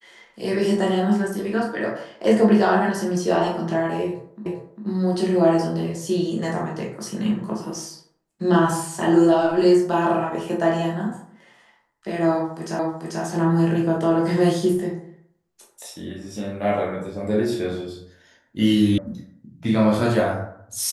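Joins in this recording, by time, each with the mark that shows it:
4.46 repeat of the last 0.4 s
12.79 repeat of the last 0.44 s
18.98 sound cut off

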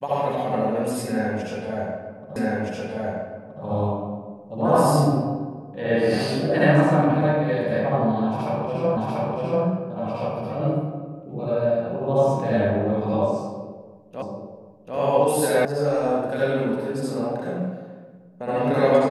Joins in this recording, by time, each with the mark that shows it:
2.36 repeat of the last 1.27 s
8.97 repeat of the last 0.69 s
14.22 repeat of the last 0.74 s
15.65 sound cut off

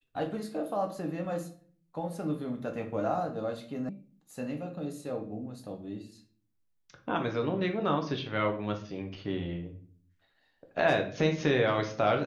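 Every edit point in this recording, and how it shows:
3.89 sound cut off

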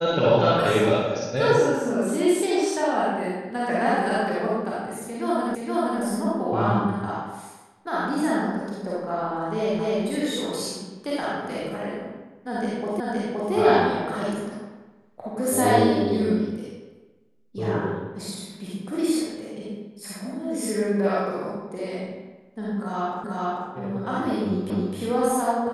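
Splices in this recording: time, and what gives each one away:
5.55 repeat of the last 0.47 s
9.79 repeat of the last 0.25 s
13 repeat of the last 0.52 s
23.24 repeat of the last 0.44 s
24.7 repeat of the last 0.26 s

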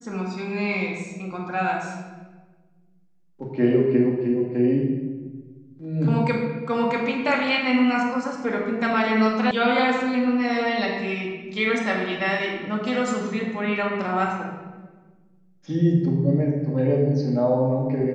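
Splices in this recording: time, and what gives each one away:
9.51 sound cut off

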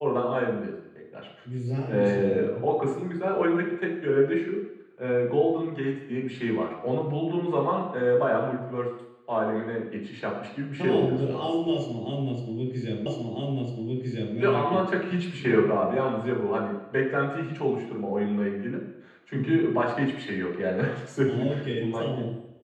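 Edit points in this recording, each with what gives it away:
13.06 repeat of the last 1.3 s

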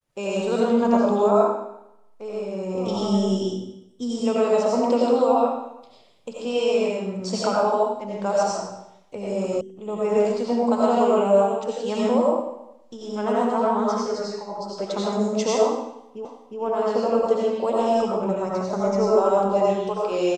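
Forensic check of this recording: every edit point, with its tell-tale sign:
9.61 sound cut off
16.25 repeat of the last 0.36 s

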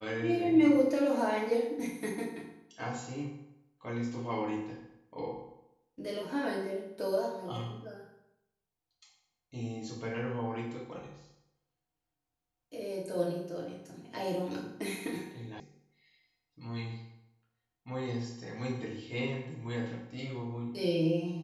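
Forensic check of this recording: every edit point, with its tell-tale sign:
15.6 sound cut off

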